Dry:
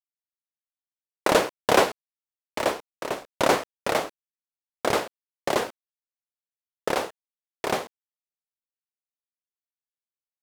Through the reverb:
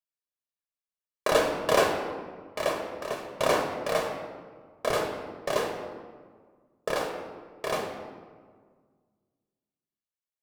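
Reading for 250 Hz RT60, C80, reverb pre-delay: 2.1 s, 7.0 dB, 4 ms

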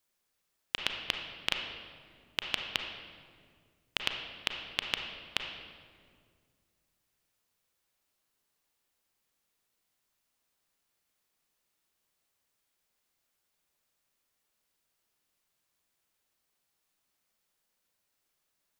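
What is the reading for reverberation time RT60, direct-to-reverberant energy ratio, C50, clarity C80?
2.0 s, 3.0 dB, 4.5 dB, 6.0 dB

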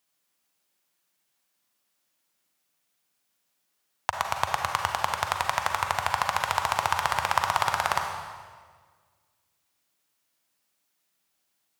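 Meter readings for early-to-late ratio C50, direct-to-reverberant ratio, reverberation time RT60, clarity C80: 4.0 dB, 3.0 dB, 1.6 s, 5.5 dB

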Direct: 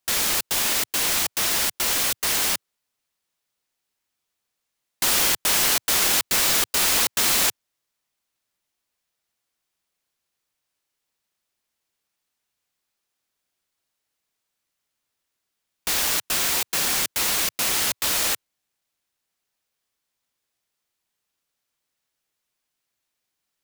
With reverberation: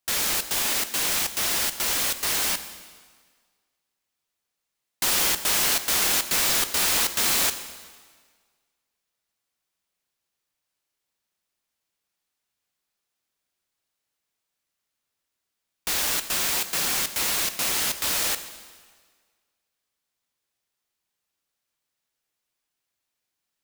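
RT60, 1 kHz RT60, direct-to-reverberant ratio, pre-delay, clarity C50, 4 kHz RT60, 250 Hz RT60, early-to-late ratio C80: 1.6 s, 1.7 s, 10.0 dB, 6 ms, 12.0 dB, 1.5 s, 1.6 s, 13.0 dB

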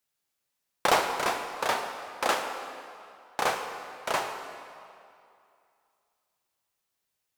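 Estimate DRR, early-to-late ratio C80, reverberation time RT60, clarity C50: 4.5 dB, 7.0 dB, 2.5 s, 6.0 dB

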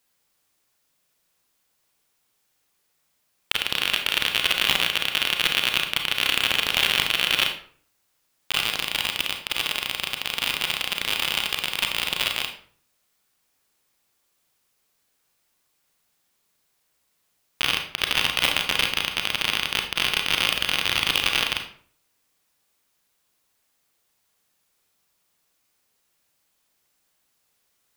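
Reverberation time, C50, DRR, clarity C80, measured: 0.50 s, 7.5 dB, 4.0 dB, 11.5 dB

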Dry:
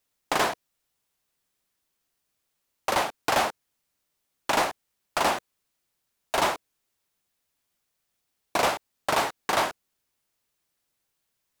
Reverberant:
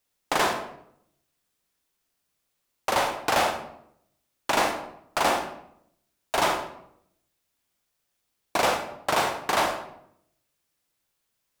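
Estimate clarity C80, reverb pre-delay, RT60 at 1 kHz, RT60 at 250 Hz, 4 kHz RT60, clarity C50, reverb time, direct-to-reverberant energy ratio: 10.0 dB, 35 ms, 0.70 s, 0.90 s, 0.50 s, 6.5 dB, 0.70 s, 5.0 dB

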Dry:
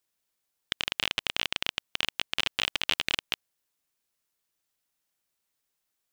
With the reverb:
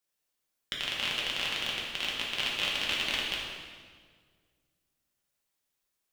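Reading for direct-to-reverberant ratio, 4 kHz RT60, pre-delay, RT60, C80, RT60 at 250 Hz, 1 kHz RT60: -5.0 dB, 1.4 s, 3 ms, 1.7 s, 2.5 dB, 2.1 s, 1.6 s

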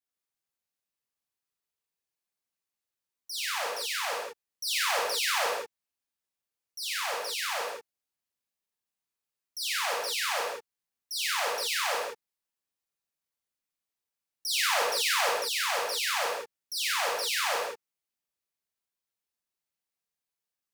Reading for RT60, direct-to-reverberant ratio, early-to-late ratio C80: no single decay rate, -4.0 dB, 2.0 dB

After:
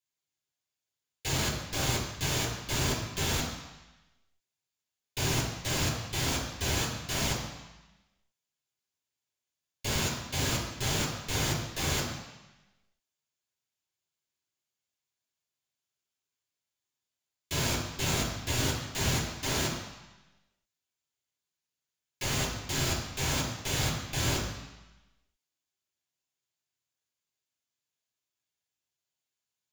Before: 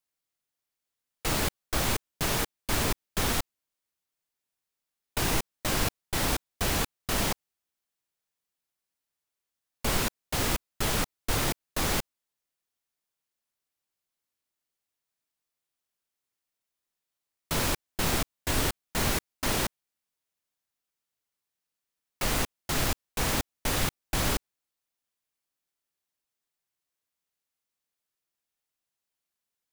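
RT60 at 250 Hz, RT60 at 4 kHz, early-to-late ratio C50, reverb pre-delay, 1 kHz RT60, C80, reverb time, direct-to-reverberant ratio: 1.1 s, 1.1 s, 3.5 dB, 3 ms, 1.1 s, 6.0 dB, 1.0 s, -4.5 dB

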